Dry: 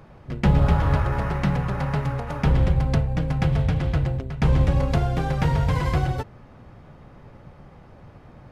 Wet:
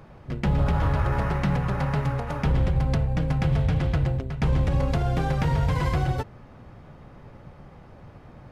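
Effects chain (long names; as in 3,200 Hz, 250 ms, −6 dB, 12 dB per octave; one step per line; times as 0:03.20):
brickwall limiter −14.5 dBFS, peak gain reduction 7.5 dB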